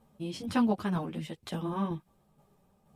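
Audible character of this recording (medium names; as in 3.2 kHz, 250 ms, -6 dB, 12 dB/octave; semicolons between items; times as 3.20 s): tremolo saw down 2.1 Hz, depth 45%; a shimmering, thickened sound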